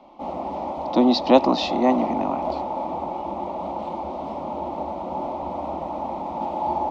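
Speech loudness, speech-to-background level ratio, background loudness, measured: -21.0 LUFS, 8.0 dB, -29.0 LUFS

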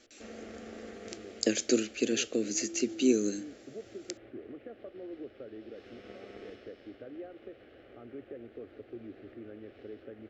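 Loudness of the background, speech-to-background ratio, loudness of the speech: -46.5 LUFS, 16.5 dB, -30.0 LUFS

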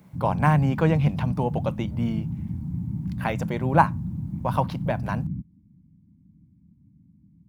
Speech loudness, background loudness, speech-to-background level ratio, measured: -25.5 LUFS, -31.5 LUFS, 6.0 dB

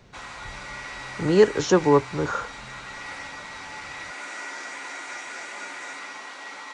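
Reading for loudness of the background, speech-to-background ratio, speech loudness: -36.0 LUFS, 14.5 dB, -21.5 LUFS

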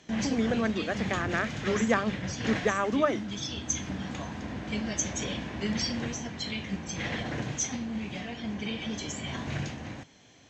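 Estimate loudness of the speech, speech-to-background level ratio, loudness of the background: -29.5 LUFS, 4.0 dB, -33.5 LUFS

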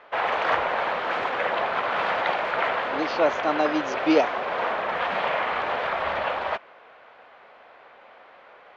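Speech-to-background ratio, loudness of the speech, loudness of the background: 1.0 dB, -25.0 LUFS, -26.0 LUFS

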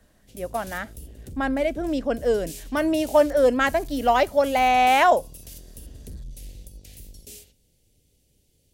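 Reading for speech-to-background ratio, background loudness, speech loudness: 20.0 dB, -41.5 LUFS, -21.5 LUFS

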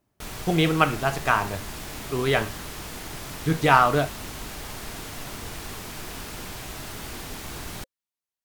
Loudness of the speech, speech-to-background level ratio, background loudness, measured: -23.0 LUFS, 13.0 dB, -36.0 LUFS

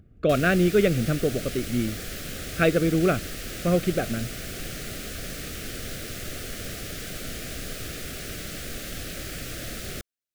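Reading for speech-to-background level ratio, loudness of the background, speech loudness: 10.0 dB, -34.5 LUFS, -24.5 LUFS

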